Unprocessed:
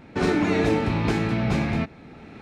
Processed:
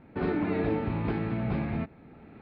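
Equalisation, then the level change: steep low-pass 5 kHz 96 dB/octave; distance through air 230 m; treble shelf 3.1 kHz -8 dB; -6.0 dB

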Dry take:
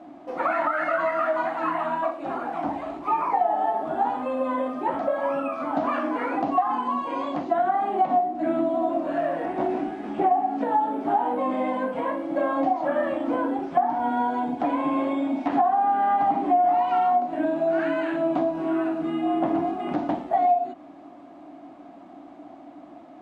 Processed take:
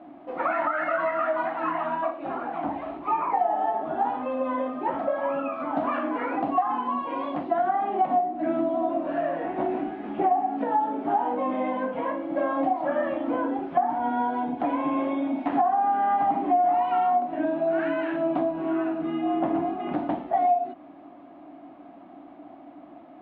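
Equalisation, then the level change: low-pass 3.5 kHz 24 dB/octave; -1.5 dB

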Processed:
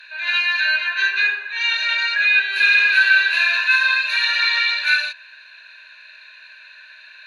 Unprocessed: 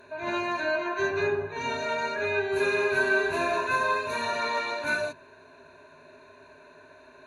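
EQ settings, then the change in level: resonant high-pass 1.7 kHz, resonance Q 6.4; high-order bell 3.6 kHz +16 dB 1.3 oct; 0.0 dB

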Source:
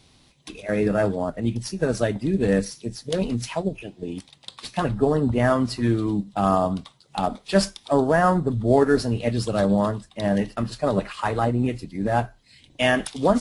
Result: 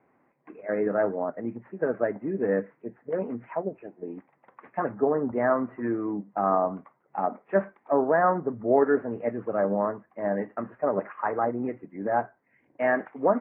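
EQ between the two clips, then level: high-pass 340 Hz 12 dB/octave; steep low-pass 2.1 kHz 48 dB/octave; distance through air 490 m; 0.0 dB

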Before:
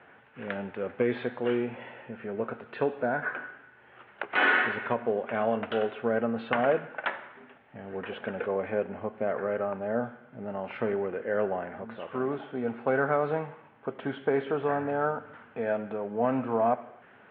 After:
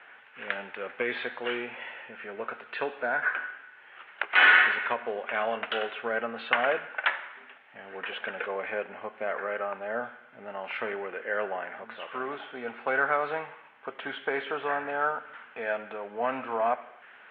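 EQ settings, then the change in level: band-pass filter 2.7 kHz, Q 0.77; +8.0 dB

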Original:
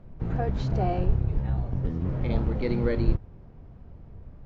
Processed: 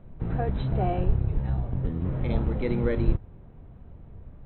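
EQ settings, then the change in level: brick-wall FIR low-pass 4.1 kHz; 0.0 dB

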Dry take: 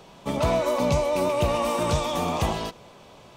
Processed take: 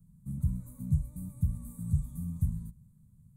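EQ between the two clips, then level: inverse Chebyshev band-stop 330–5700 Hz, stop band 40 dB; treble shelf 8.3 kHz -11.5 dB; hum notches 60/120 Hz; 0.0 dB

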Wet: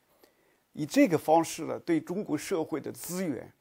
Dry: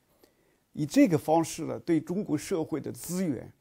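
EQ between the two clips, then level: bass shelf 320 Hz -12 dB; peaking EQ 7.7 kHz -5 dB 2.3 oct; +4.5 dB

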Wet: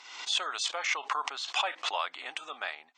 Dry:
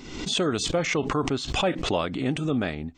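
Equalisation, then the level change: Chebyshev high-pass 870 Hz, order 3; distance through air 54 m; 0.0 dB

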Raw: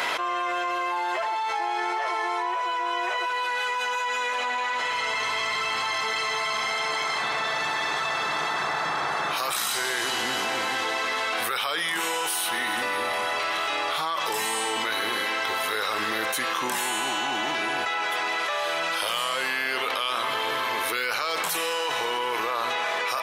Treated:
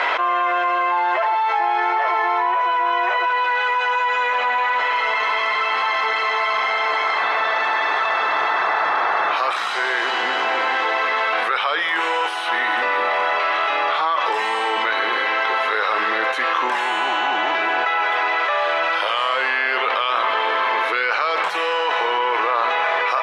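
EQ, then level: band-pass 460–2300 Hz; +9.0 dB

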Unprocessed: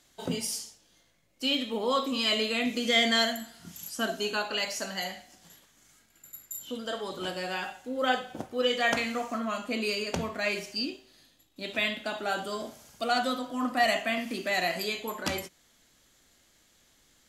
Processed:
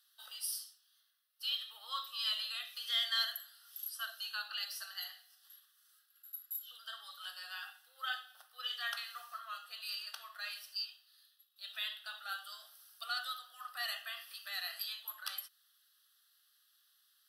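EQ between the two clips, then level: ladder high-pass 1 kHz, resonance 70%; differentiator; static phaser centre 1.5 kHz, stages 8; +11.5 dB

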